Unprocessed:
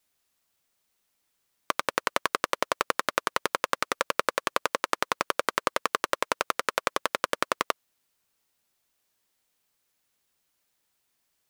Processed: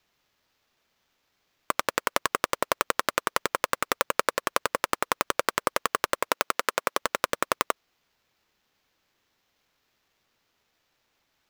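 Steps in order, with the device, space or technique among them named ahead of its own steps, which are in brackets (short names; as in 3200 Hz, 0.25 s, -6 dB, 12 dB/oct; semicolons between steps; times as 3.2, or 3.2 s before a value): early companding sampler (sample-rate reducer 9400 Hz, jitter 0%; companded quantiser 8-bit); 6.29–7.02 HPF 170 Hz 12 dB/oct; gain +1 dB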